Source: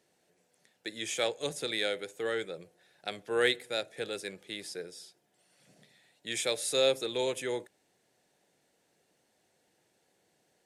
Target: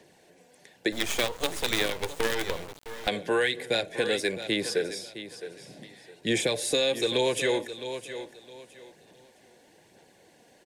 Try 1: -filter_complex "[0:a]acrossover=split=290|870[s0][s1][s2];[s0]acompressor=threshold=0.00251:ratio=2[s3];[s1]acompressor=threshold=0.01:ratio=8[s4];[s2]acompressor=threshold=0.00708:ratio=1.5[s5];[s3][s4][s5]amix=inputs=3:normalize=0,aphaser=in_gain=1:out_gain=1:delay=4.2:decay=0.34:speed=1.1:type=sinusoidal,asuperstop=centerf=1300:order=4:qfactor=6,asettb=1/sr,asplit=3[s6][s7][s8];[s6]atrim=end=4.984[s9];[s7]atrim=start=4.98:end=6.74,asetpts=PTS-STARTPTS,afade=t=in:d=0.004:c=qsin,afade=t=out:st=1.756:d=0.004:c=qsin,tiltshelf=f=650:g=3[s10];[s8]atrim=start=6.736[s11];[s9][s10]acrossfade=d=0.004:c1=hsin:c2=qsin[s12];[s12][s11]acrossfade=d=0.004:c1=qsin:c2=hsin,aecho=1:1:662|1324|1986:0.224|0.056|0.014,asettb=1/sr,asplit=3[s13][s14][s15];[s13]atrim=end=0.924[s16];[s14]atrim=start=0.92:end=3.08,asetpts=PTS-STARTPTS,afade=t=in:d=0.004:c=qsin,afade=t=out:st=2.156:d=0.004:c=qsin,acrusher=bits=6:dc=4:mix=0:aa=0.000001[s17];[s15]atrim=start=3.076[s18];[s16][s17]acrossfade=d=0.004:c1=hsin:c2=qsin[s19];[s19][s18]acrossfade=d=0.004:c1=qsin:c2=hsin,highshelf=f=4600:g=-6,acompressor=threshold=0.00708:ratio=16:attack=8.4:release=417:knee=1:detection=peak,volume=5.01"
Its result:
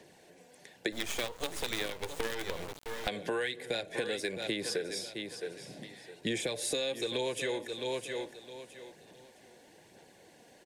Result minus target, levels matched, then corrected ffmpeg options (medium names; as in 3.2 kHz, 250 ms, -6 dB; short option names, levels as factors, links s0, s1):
compression: peak gain reduction +8.5 dB
-filter_complex "[0:a]acrossover=split=290|870[s0][s1][s2];[s0]acompressor=threshold=0.00251:ratio=2[s3];[s1]acompressor=threshold=0.01:ratio=8[s4];[s2]acompressor=threshold=0.00708:ratio=1.5[s5];[s3][s4][s5]amix=inputs=3:normalize=0,aphaser=in_gain=1:out_gain=1:delay=4.2:decay=0.34:speed=1.1:type=sinusoidal,asuperstop=centerf=1300:order=4:qfactor=6,asettb=1/sr,asplit=3[s6][s7][s8];[s6]atrim=end=4.984[s9];[s7]atrim=start=4.98:end=6.74,asetpts=PTS-STARTPTS,afade=t=in:d=0.004:c=qsin,afade=t=out:st=1.756:d=0.004:c=qsin,tiltshelf=f=650:g=3[s10];[s8]atrim=start=6.736[s11];[s9][s10]acrossfade=d=0.004:c1=hsin:c2=qsin[s12];[s12][s11]acrossfade=d=0.004:c1=qsin:c2=hsin,aecho=1:1:662|1324|1986:0.224|0.056|0.014,asettb=1/sr,asplit=3[s13][s14][s15];[s13]atrim=end=0.924[s16];[s14]atrim=start=0.92:end=3.08,asetpts=PTS-STARTPTS,afade=t=in:d=0.004:c=qsin,afade=t=out:st=2.156:d=0.004:c=qsin,acrusher=bits=6:dc=4:mix=0:aa=0.000001[s17];[s15]atrim=start=3.076[s18];[s16][s17]acrossfade=d=0.004:c1=hsin:c2=qsin[s19];[s19][s18]acrossfade=d=0.004:c1=qsin:c2=hsin,highshelf=f=4600:g=-6,acompressor=threshold=0.02:ratio=16:attack=8.4:release=417:knee=1:detection=peak,volume=5.01"